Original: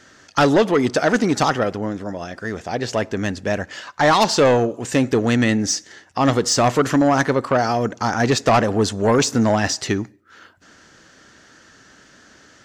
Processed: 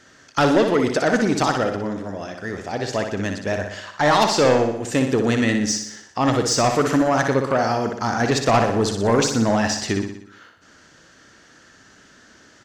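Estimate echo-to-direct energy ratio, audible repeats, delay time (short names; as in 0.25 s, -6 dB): -5.0 dB, 6, 61 ms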